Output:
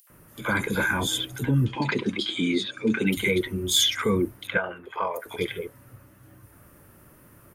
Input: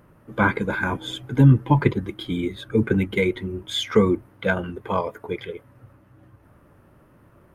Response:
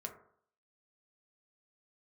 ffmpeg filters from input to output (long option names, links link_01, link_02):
-filter_complex "[0:a]asettb=1/sr,asplit=3[link_01][link_02][link_03];[link_01]atrim=end=4.474[link_04];[link_02]atrim=start=4.47:end=5.16,asetpts=PTS-STARTPTS,afade=type=in:duration=0.004:curve=qsin,afade=type=out:start_time=0.686:duration=0.004:curve=qsin,acrossover=split=460 2600:gain=0.112 1 0.0794[link_05][link_06][link_07];[link_05][link_06][link_07]amix=inputs=3:normalize=0[link_08];[link_03]atrim=start=5.156[link_09];[link_04][link_08]acrossfade=duration=0.004:curve1=hsin:curve2=qsin[link_10];[link_10][link_09]acrossfade=duration=0.004:curve1=qsin:curve2=hsin,alimiter=limit=-15dB:level=0:latency=1:release=61,asettb=1/sr,asplit=3[link_11][link_12][link_13];[link_11]atrim=end=1.654[link_14];[link_12]atrim=start=1.65:end=3.07,asetpts=PTS-STARTPTS,afade=type=in:duration=0.004:curve=qsin,afade=type=out:start_time=1.416:duration=0.004:curve=qsin,highpass=210,equalizer=frequency=230:width_type=q:width=4:gain=8,equalizer=frequency=2600:width_type=q:width=4:gain=6,equalizer=frequency=4500:width_type=q:width=4:gain=6,lowpass=frequency=7100:width=0.5412,lowpass=frequency=7100:width=1.3066[link_15];[link_13]atrim=start=3.066[link_16];[link_14][link_15]acrossfade=duration=0.004:curve1=hsin:curve2=qsin[link_17];[link_17][link_16]acrossfade=duration=0.004:curve1=qsin:curve2=hsin,acrossover=split=840|3400[link_18][link_19][link_20];[link_19]adelay=70[link_21];[link_18]adelay=100[link_22];[link_22][link_21][link_20]amix=inputs=3:normalize=0,crystalizer=i=5:c=0"